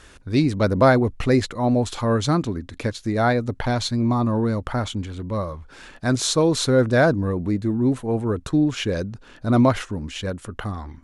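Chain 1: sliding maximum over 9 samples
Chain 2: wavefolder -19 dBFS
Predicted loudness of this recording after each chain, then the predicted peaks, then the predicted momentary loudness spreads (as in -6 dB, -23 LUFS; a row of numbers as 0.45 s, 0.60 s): -22.0 LUFS, -26.5 LUFS; -4.5 dBFS, -19.0 dBFS; 13 LU, 7 LU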